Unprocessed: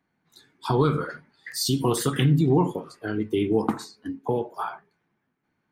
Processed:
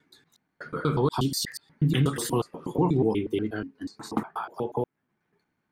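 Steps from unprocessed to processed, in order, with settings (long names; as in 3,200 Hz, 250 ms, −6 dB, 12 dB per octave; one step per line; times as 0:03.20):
slices reordered back to front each 121 ms, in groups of 5
level −2.5 dB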